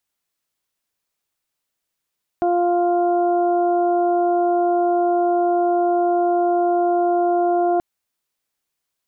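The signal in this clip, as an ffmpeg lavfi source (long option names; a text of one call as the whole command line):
ffmpeg -f lavfi -i "aevalsrc='0.119*sin(2*PI*350*t)+0.133*sin(2*PI*700*t)+0.0168*sin(2*PI*1050*t)+0.0133*sin(2*PI*1400*t)':duration=5.38:sample_rate=44100" out.wav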